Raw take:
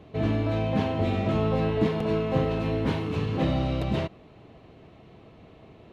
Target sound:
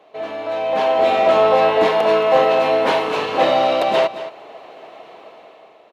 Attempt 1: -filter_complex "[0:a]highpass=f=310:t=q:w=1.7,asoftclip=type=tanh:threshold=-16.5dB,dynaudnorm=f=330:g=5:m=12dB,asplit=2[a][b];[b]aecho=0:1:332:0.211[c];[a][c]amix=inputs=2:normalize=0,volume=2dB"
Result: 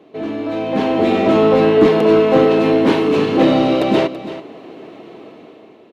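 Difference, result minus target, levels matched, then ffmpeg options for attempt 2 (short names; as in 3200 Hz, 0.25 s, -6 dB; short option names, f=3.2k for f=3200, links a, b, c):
250 Hz band +12.5 dB; echo 0.11 s late
-filter_complex "[0:a]highpass=f=650:t=q:w=1.7,asoftclip=type=tanh:threshold=-16.5dB,dynaudnorm=f=330:g=5:m=12dB,asplit=2[a][b];[b]aecho=0:1:222:0.211[c];[a][c]amix=inputs=2:normalize=0,volume=2dB"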